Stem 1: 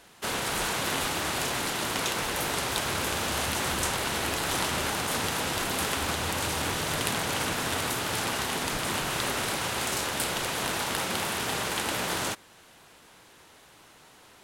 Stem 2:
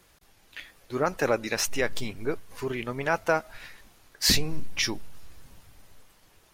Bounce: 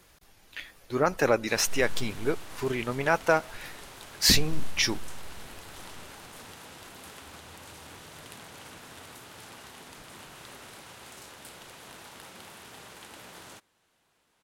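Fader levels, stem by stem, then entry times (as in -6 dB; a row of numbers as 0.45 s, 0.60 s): -17.5 dB, +1.5 dB; 1.25 s, 0.00 s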